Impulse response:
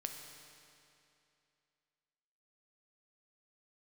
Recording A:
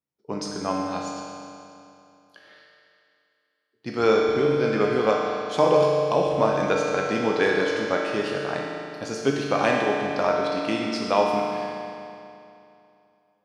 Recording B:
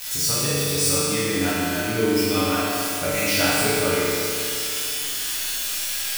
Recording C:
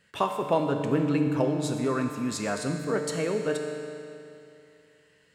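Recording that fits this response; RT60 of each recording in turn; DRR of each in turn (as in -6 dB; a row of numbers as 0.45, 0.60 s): C; 2.7, 2.7, 2.7 s; -2.0, -11.0, 3.5 dB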